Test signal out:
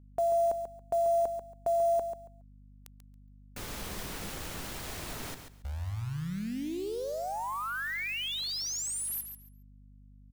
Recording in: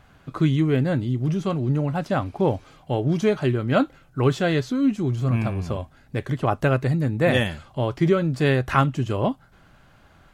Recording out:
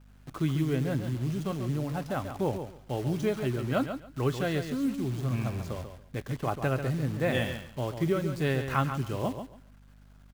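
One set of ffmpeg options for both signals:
-af "acrusher=bits=7:dc=4:mix=0:aa=0.000001,aecho=1:1:139|278|417:0.376|0.0714|0.0136,aeval=exprs='val(0)+0.00562*(sin(2*PI*50*n/s)+sin(2*PI*2*50*n/s)/2+sin(2*PI*3*50*n/s)/3+sin(2*PI*4*50*n/s)/4+sin(2*PI*5*50*n/s)/5)':c=same,volume=-8.5dB"

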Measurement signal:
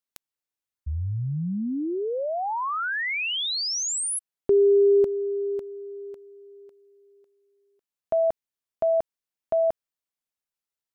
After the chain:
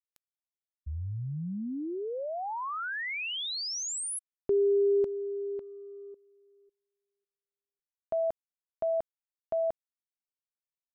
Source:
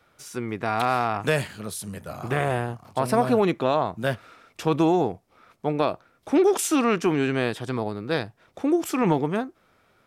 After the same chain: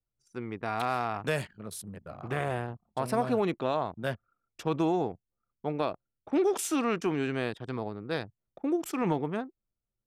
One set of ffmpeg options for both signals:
-af "anlmdn=2.51,volume=-7dB"

